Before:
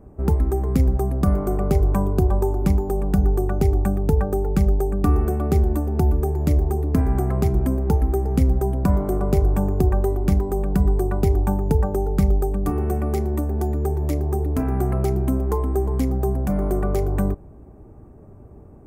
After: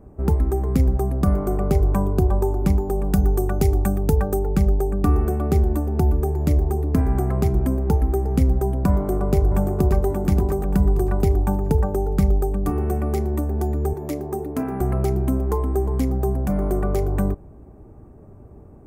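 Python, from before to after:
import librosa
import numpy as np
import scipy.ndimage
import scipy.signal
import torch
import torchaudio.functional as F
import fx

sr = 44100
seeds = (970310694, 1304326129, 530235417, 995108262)

y = fx.high_shelf(x, sr, hz=3000.0, db=8.0, at=(3.04, 4.39))
y = fx.echo_throw(y, sr, start_s=8.93, length_s=1.13, ms=580, feedback_pct=40, wet_db=-5.5)
y = fx.highpass(y, sr, hz=170.0, slope=12, at=(13.93, 14.81))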